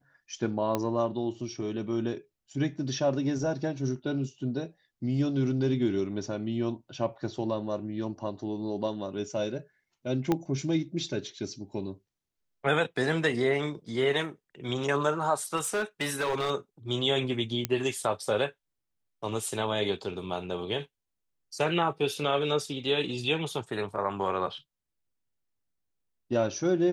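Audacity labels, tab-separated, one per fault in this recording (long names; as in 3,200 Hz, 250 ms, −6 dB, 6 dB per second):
0.750000	0.750000	click −14 dBFS
10.320000	10.320000	click −13 dBFS
15.560000	16.510000	clipping −24.5 dBFS
17.650000	17.650000	click −10 dBFS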